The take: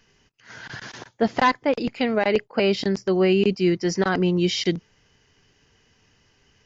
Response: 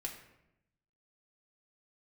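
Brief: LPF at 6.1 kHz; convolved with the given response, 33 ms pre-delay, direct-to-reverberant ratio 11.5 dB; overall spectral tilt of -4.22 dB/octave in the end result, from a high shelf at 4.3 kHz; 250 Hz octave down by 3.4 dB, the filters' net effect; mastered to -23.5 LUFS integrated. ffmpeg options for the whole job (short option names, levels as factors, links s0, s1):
-filter_complex "[0:a]lowpass=6100,equalizer=f=250:t=o:g=-5.5,highshelf=f=4300:g=-8,asplit=2[s0][s1];[1:a]atrim=start_sample=2205,adelay=33[s2];[s1][s2]afir=irnorm=-1:irlink=0,volume=0.299[s3];[s0][s3]amix=inputs=2:normalize=0,volume=1.06"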